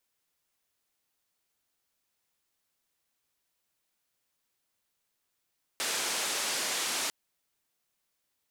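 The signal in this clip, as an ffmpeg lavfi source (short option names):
-f lavfi -i "anoisesrc=c=white:d=1.3:r=44100:seed=1,highpass=f=290,lowpass=f=8300,volume=-22.9dB"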